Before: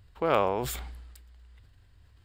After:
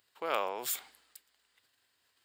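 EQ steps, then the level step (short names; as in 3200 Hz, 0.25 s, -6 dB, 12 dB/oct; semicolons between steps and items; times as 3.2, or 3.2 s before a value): HPF 280 Hz 12 dB/oct; tilt +3 dB/oct; -6.5 dB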